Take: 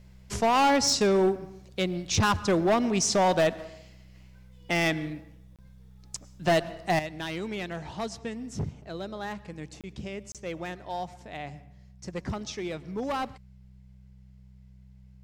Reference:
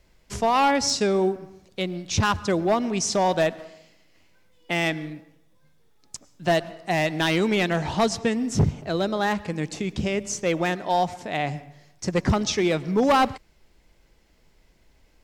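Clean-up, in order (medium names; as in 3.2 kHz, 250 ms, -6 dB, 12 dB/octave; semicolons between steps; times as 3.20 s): clip repair -18 dBFS; de-hum 63.7 Hz, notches 3; interpolate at 5.56/9.81/10.32 s, 27 ms; gain correction +12 dB, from 6.99 s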